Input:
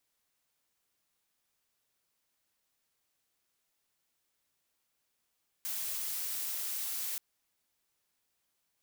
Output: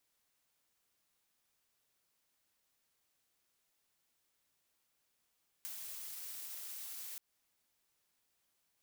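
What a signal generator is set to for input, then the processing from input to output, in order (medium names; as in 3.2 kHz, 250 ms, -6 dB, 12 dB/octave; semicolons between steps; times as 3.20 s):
noise blue, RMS -36.5 dBFS 1.53 s
peak limiter -29 dBFS; compression 6:1, threshold -43 dBFS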